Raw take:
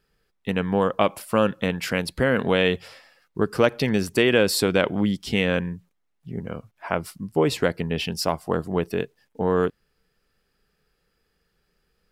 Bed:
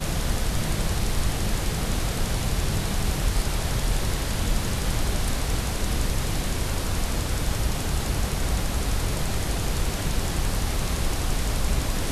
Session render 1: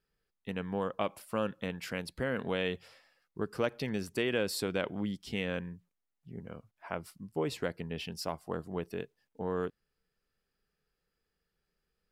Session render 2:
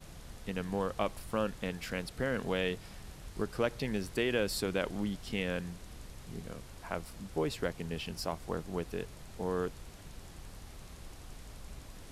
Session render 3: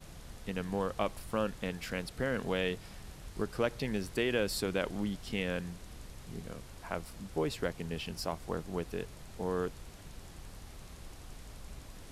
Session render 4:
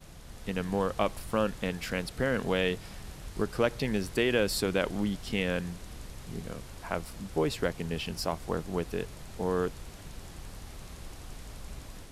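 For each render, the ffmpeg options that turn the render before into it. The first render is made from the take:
ffmpeg -i in.wav -af "volume=-12.5dB" out.wav
ffmpeg -i in.wav -i bed.wav -filter_complex "[1:a]volume=-23.5dB[link_01];[0:a][link_01]amix=inputs=2:normalize=0" out.wav
ffmpeg -i in.wav -af anull out.wav
ffmpeg -i in.wav -af "dynaudnorm=framelen=250:gausssize=3:maxgain=4.5dB" out.wav

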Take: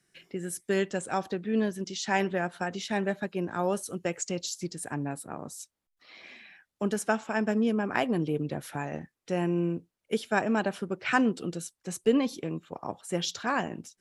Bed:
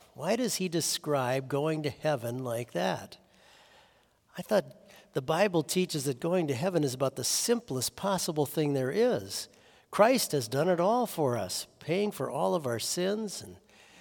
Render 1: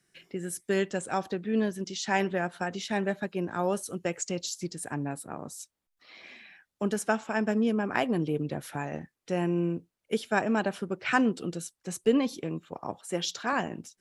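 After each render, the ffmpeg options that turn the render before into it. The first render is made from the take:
ffmpeg -i in.wav -filter_complex "[0:a]asettb=1/sr,asplit=3[link_01][link_02][link_03];[link_01]atrim=end=12.994[link_04];[link_02]atrim=start=12.99:end=13.53,asetpts=PTS-STARTPTS,afade=type=in:duration=0.004:curve=qsin,afade=type=out:start_time=0.536:duration=0.004:curve=qsin,highpass=190[link_05];[link_03]atrim=start=13.526[link_06];[link_04][link_05]acrossfade=duration=0.004:curve1=hsin:curve2=qsin[link_07];[link_07][link_06]acrossfade=duration=0.004:curve1=qsin:curve2=hsin" out.wav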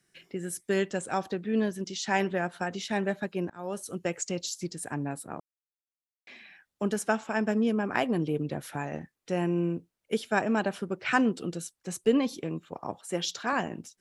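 ffmpeg -i in.wav -filter_complex "[0:a]asplit=4[link_01][link_02][link_03][link_04];[link_01]atrim=end=3.5,asetpts=PTS-STARTPTS,afade=type=out:start_time=3.496:duration=0.004:curve=hsin:silence=0.0630957[link_05];[link_02]atrim=start=3.5:end=5.4,asetpts=PTS-STARTPTS,afade=type=in:duration=0.46:silence=0.0630957,afade=type=out:start_time=1.896:duration=0.004:curve=hsin[link_06];[link_03]atrim=start=5.4:end=6.27,asetpts=PTS-STARTPTS,volume=0[link_07];[link_04]atrim=start=6.27,asetpts=PTS-STARTPTS,afade=type=in:duration=0.004:curve=hsin[link_08];[link_05][link_06][link_07][link_08]concat=n=4:v=0:a=1" out.wav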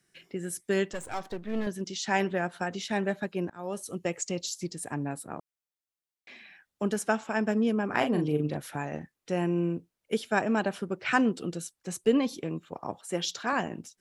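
ffmpeg -i in.wav -filter_complex "[0:a]asettb=1/sr,asplit=3[link_01][link_02][link_03];[link_01]atrim=end=0.934[link_04];[link_02]atrim=start=0.93:end=1.67,asetpts=PTS-STARTPTS,afade=type=in:duration=0.004:curve=qsin,afade=type=out:start_time=0.736:duration=0.004:curve=qsin,aeval=exprs='if(lt(val(0),0),0.251*val(0),val(0))':channel_layout=same[link_05];[link_03]atrim=start=1.666[link_06];[link_04][link_05]acrossfade=duration=0.004:curve1=hsin:curve2=qsin[link_07];[link_07][link_06]acrossfade=duration=0.004:curve1=qsin:curve2=hsin,asettb=1/sr,asplit=3[link_08][link_09][link_10];[link_08]atrim=end=3.614[link_11];[link_09]atrim=start=3.61:end=4.93,asetpts=PTS-STARTPTS,afade=type=in:duration=0.004:curve=qsin,afade=type=out:start_time=1.316:duration=0.004:curve=qsin,bandreject=frequency=1500:width=6.1[link_12];[link_10]atrim=start=4.926[link_13];[link_11][link_12]acrossfade=duration=0.004:curve1=hsin:curve2=qsin[link_14];[link_14][link_13]acrossfade=duration=0.004:curve1=qsin:curve2=hsin,asettb=1/sr,asplit=3[link_15][link_16][link_17];[link_15]atrim=end=7.864[link_18];[link_16]atrim=start=7.86:end=8.57,asetpts=PTS-STARTPTS,afade=type=in:duration=0.004:curve=qsin,afade=type=out:start_time=0.706:duration=0.004:curve=qsin,asplit=2[link_19][link_20];[link_20]adelay=40,volume=-6dB[link_21];[link_19][link_21]amix=inputs=2:normalize=0,atrim=end_sample=31311[link_22];[link_17]atrim=start=8.566[link_23];[link_18][link_22]acrossfade=duration=0.004:curve1=hsin:curve2=qsin[link_24];[link_24][link_23]acrossfade=duration=0.004:curve1=qsin:curve2=hsin" out.wav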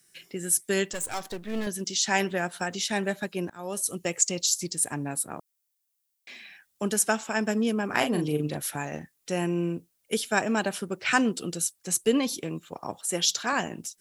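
ffmpeg -i in.wav -af "crystalizer=i=3.5:c=0" out.wav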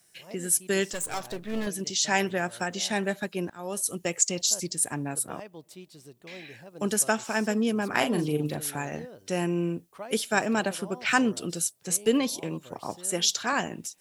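ffmpeg -i in.wav -i bed.wav -filter_complex "[1:a]volume=-18dB[link_01];[0:a][link_01]amix=inputs=2:normalize=0" out.wav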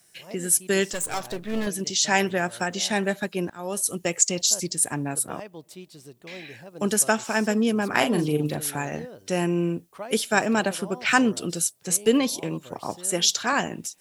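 ffmpeg -i in.wav -af "volume=3.5dB" out.wav

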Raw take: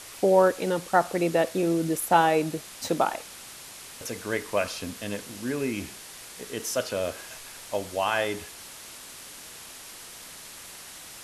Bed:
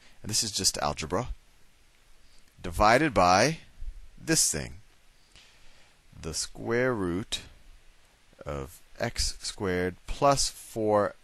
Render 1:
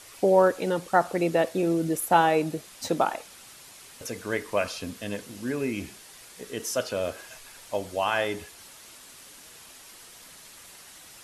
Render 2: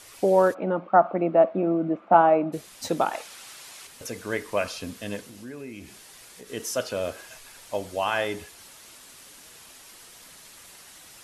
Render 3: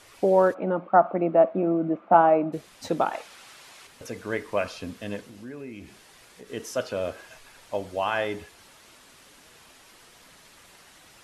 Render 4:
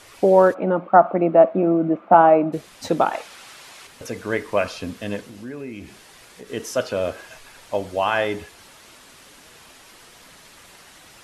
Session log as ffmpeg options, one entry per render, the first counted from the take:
ffmpeg -i in.wav -af "afftdn=noise_reduction=6:noise_floor=-44" out.wav
ffmpeg -i in.wav -filter_complex "[0:a]asplit=3[link_01][link_02][link_03];[link_01]afade=type=out:start_time=0.53:duration=0.02[link_04];[link_02]highpass=200,equalizer=frequency=200:width_type=q:width=4:gain=8,equalizer=frequency=300:width_type=q:width=4:gain=3,equalizer=frequency=450:width_type=q:width=4:gain=-6,equalizer=frequency=650:width_type=q:width=4:gain=9,equalizer=frequency=1200:width_type=q:width=4:gain=6,equalizer=frequency=1800:width_type=q:width=4:gain=-10,lowpass=frequency=2100:width=0.5412,lowpass=frequency=2100:width=1.3066,afade=type=in:start_time=0.53:duration=0.02,afade=type=out:start_time=2.52:duration=0.02[link_05];[link_03]afade=type=in:start_time=2.52:duration=0.02[link_06];[link_04][link_05][link_06]amix=inputs=3:normalize=0,asettb=1/sr,asplit=3[link_07][link_08][link_09];[link_07]atrim=end=3.134[link_10];[link_08]atrim=start=3.13:end=3.87,asetpts=PTS-STARTPTS,afade=type=in:duration=0.004:curve=qsin,afade=type=out:start_time=0.736:duration=0.004:curve=qsin,asplit=2[link_11][link_12];[link_12]highpass=frequency=720:poles=1,volume=10dB,asoftclip=type=tanh:threshold=-19dB[link_13];[link_11][link_13]amix=inputs=2:normalize=0,lowpass=frequency=7700:poles=1,volume=-6dB[link_14];[link_09]atrim=start=3.866[link_15];[link_10][link_14]acrossfade=duration=0.004:curve1=hsin:curve2=qsin[link_16];[link_16][link_15]acrossfade=duration=0.004:curve1=qsin:curve2=hsin,asettb=1/sr,asplit=3[link_17][link_18][link_19];[link_17]atrim=end=5.204[link_20];[link_18]atrim=start=5.2:end=6.5,asetpts=PTS-STARTPTS,afade=type=in:duration=0.004:curve=qsin,afade=type=out:start_time=1.296:duration=0.004:curve=qsin,acompressor=threshold=-43dB:ratio=2:attack=3.2:release=140:knee=1:detection=peak[link_21];[link_19]atrim=start=6.496[link_22];[link_20][link_21]acrossfade=duration=0.004:curve1=hsin:curve2=qsin[link_23];[link_23][link_22]acrossfade=duration=0.004:curve1=qsin:curve2=hsin" out.wav
ffmpeg -i in.wav -af "highshelf=frequency=5000:gain=-11" out.wav
ffmpeg -i in.wav -af "volume=5.5dB,alimiter=limit=-1dB:level=0:latency=1" out.wav

